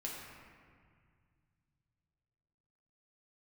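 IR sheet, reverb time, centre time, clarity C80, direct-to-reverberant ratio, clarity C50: 2.0 s, 99 ms, 1.5 dB, −4.0 dB, 0.5 dB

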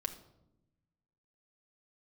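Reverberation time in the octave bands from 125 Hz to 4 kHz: 1.6, 1.5, 1.0, 0.75, 0.55, 0.55 seconds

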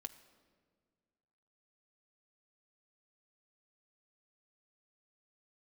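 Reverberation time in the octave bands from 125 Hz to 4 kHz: 2.3, 2.2, 2.0, 1.5, 1.3, 1.1 seconds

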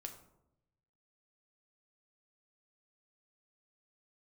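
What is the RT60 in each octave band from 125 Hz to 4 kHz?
1.4, 1.1, 0.95, 0.75, 0.50, 0.40 seconds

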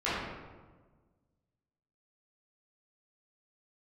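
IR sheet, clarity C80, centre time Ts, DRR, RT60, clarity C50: 1.0 dB, 96 ms, −13.0 dB, 1.4 s, −2.5 dB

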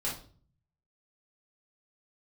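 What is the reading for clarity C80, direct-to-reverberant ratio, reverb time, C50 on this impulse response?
12.5 dB, −7.0 dB, 0.45 s, 6.0 dB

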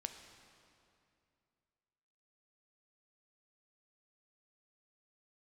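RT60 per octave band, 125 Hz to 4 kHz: 2.9, 2.8, 2.6, 2.5, 2.3, 2.0 seconds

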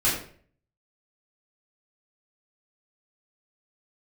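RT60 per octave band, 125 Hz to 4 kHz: 0.70, 0.55, 0.55, 0.45, 0.45, 0.40 seconds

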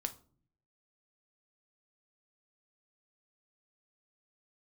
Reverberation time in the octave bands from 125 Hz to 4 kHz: 0.95, 0.85, 0.55, 0.40, 0.30, 0.30 seconds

